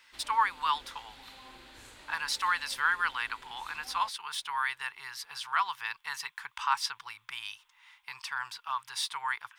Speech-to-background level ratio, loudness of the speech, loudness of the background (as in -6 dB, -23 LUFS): 18.5 dB, -33.0 LUFS, -51.5 LUFS